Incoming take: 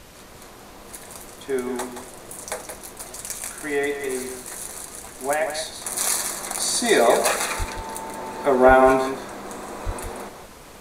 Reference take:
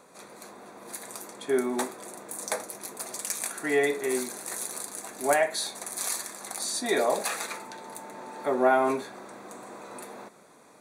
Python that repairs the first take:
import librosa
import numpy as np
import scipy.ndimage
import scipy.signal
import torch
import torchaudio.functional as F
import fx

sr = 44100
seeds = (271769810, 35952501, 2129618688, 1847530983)

y = fx.highpass(x, sr, hz=140.0, slope=24, at=(7.58, 7.7), fade=0.02)
y = fx.highpass(y, sr, hz=140.0, slope=24, at=(8.67, 8.79), fade=0.02)
y = fx.highpass(y, sr, hz=140.0, slope=24, at=(9.85, 9.97), fade=0.02)
y = fx.noise_reduce(y, sr, print_start_s=0.0, print_end_s=0.5, reduce_db=6.0)
y = fx.fix_echo_inverse(y, sr, delay_ms=173, level_db=-8.0)
y = fx.gain(y, sr, db=fx.steps((0.0, 0.0), (5.85, -8.0)))